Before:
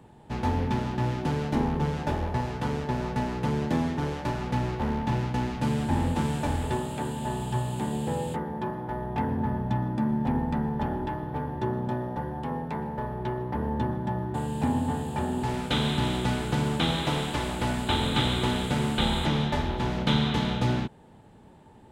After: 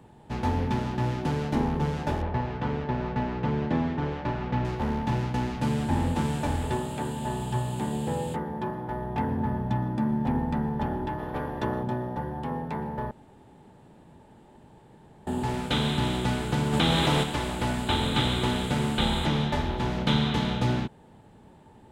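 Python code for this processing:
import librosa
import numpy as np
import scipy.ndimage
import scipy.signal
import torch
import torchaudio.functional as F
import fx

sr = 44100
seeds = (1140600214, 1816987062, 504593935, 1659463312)

y = fx.lowpass(x, sr, hz=3200.0, slope=12, at=(2.22, 4.65))
y = fx.spec_clip(y, sr, under_db=12, at=(11.18, 11.82), fade=0.02)
y = fx.env_flatten(y, sr, amount_pct=70, at=(16.72, 17.22), fade=0.02)
y = fx.edit(y, sr, fx.room_tone_fill(start_s=13.11, length_s=2.16), tone=tone)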